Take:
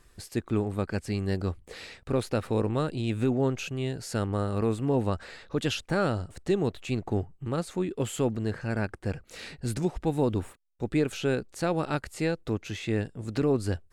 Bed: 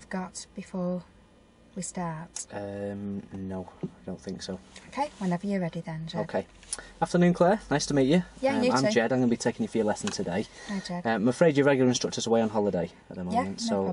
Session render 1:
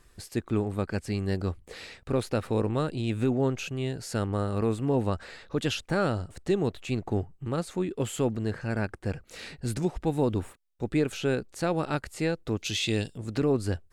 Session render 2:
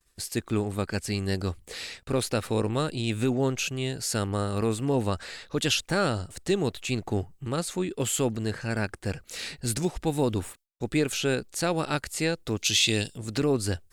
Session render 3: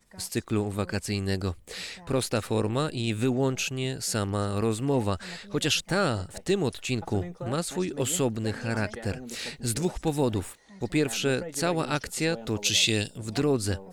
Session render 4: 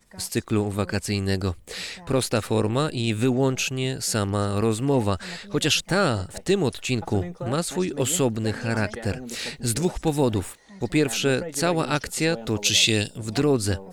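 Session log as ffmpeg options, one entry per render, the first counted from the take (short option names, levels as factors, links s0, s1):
-filter_complex "[0:a]asettb=1/sr,asplit=3[s0][s1][s2];[s0]atrim=end=12.574[s3];[s1]atrim=start=12.57:end=13.18,asetpts=PTS-STARTPTS,afade=t=in:d=0.004:c=qsin,afade=t=out:st=0.606:d=0.004:c=qsin,highshelf=f=2400:t=q:w=1.5:g=10.5[s4];[s2]atrim=start=13.176[s5];[s3][s4]acrossfade=d=0.004:c1=hsin:c2=qsin[s6];[s6][s5]acrossfade=d=0.004:c1=qsin:c2=hsin"
-af "agate=range=0.0224:threshold=0.00398:ratio=3:detection=peak,highshelf=f=2600:g=11.5"
-filter_complex "[1:a]volume=0.141[s0];[0:a][s0]amix=inputs=2:normalize=0"
-af "volume=1.58"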